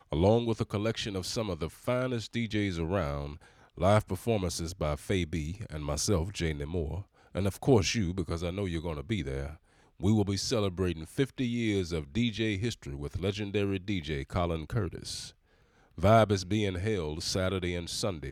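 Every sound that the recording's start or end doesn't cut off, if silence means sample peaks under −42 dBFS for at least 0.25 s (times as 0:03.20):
0:03.78–0:07.02
0:07.35–0:09.55
0:10.00–0:15.30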